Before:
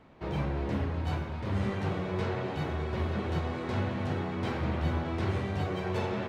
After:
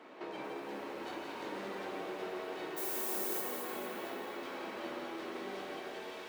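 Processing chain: fade out at the end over 1.51 s; Chebyshev high-pass 310 Hz, order 3; feedback echo behind a high-pass 171 ms, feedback 76%, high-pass 2.4 kHz, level -5 dB; compression 6:1, threshold -49 dBFS, peak gain reduction 17 dB; 2.76–3.40 s: added noise violet -46 dBFS; 3.94–4.76 s: frequency shift +16 Hz; plate-style reverb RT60 2.9 s, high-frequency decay 0.65×, DRR 0 dB; bit-crushed delay 232 ms, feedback 55%, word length 10-bit, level -9.5 dB; trim +5.5 dB

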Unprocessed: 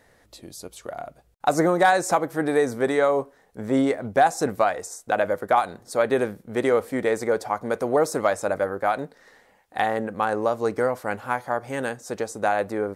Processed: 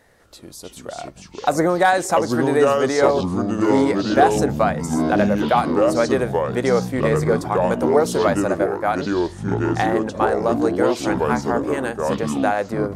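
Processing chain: ever faster or slower copies 198 ms, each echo -5 st, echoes 3; trim +2 dB

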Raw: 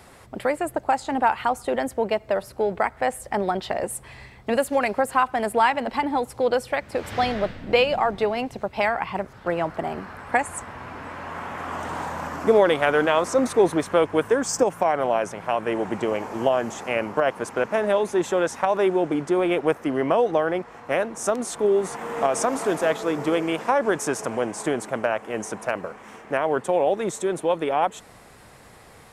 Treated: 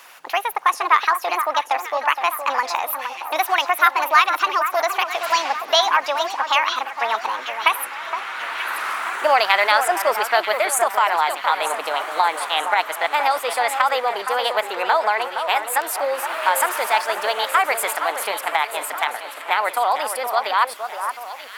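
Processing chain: high-pass 690 Hz 12 dB/octave; on a send: echo whose repeats swap between lows and highs 631 ms, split 1.3 kHz, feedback 66%, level -7.5 dB; on the sum: speed mistake 33 rpm record played at 45 rpm; trim +6.5 dB

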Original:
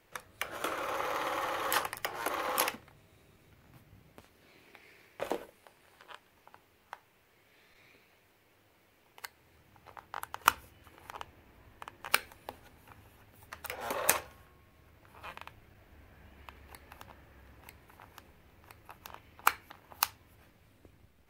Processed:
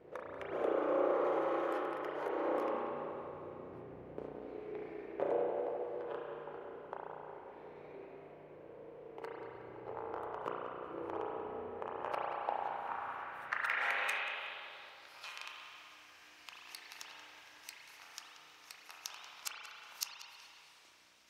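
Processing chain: 1.24–2.29 s: tilt EQ +2 dB/octave; compression 12:1, threshold -42 dBFS, peak gain reduction 25.5 dB; hum 50 Hz, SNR 14 dB; spring tank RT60 2.4 s, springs 33 ms, chirp 75 ms, DRR -3.5 dB; band-pass sweep 430 Hz -> 5.6 kHz, 11.69–15.34 s; on a send: tape echo 184 ms, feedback 71%, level -7.5 dB, low-pass 2.4 kHz; on the sum: trim +15 dB

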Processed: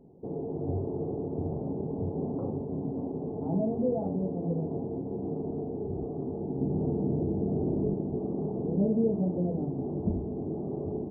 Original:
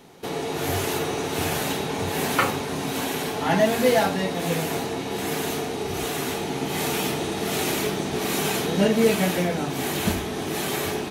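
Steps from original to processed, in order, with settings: 6.58–7.94 s: tilt EQ -2 dB/octave; in parallel at 0 dB: peak limiter -15.5 dBFS, peak gain reduction 8 dB; on the sum: Gaussian low-pass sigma 16 samples; trim -7.5 dB

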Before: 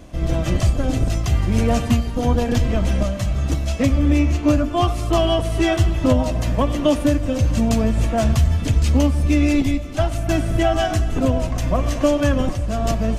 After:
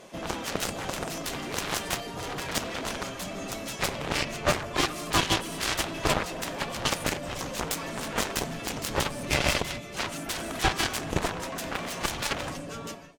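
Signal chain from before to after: fade out at the end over 0.79 s; comb 7.3 ms, depth 47%; spectral gate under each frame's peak -10 dB weak; Chebyshev shaper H 7 -11 dB, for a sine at -11 dBFS

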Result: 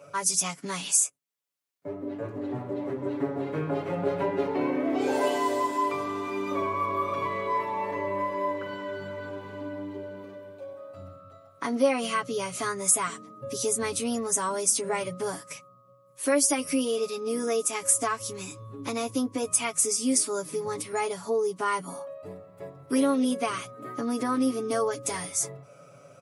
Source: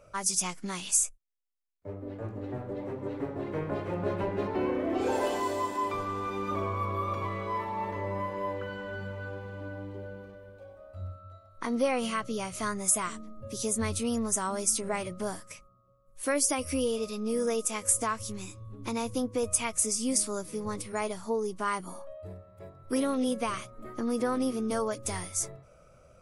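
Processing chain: high-pass 130 Hz 24 dB/octave; comb 7.1 ms, depth 84%; in parallel at -2 dB: compression, threshold -43 dBFS, peak gain reduction 22.5 dB

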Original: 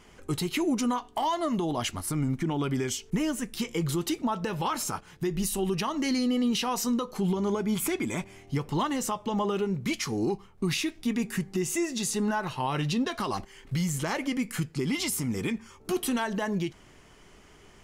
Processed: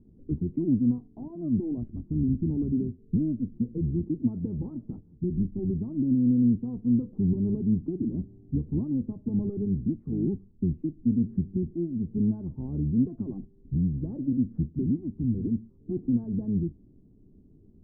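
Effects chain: octave divider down 1 oct, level -4 dB; four-pole ladder low-pass 320 Hz, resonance 40%; trim +7 dB

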